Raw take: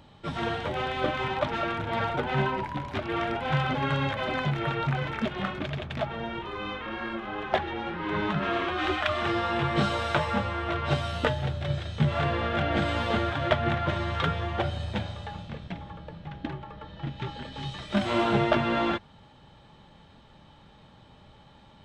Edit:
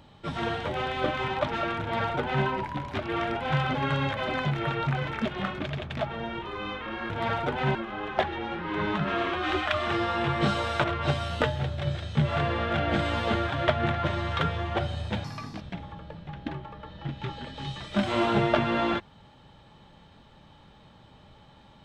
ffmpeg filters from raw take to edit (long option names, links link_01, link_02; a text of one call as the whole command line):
ffmpeg -i in.wav -filter_complex "[0:a]asplit=6[link_01][link_02][link_03][link_04][link_05][link_06];[link_01]atrim=end=7.102[link_07];[link_02]atrim=start=1.808:end=2.462[link_08];[link_03]atrim=start=7.098:end=10.192[link_09];[link_04]atrim=start=10.668:end=15.074[link_10];[link_05]atrim=start=15.07:end=15.59,asetpts=PTS-STARTPTS,asetrate=62181,aresample=44100[link_11];[link_06]atrim=start=15.586[link_12];[link_07][link_08]acrossfade=duration=0.004:curve1=hsin:curve2=hsin[link_13];[link_13][link_09]acrossfade=duration=0.004:curve1=hsin:curve2=hsin[link_14];[link_14][link_10]acrossfade=duration=0.004:curve1=hsin:curve2=hsin[link_15];[link_15][link_11]acrossfade=duration=0.004:curve1=hsin:curve2=hsin[link_16];[link_16][link_12]acrossfade=duration=0.004:curve1=hsin:curve2=hsin" out.wav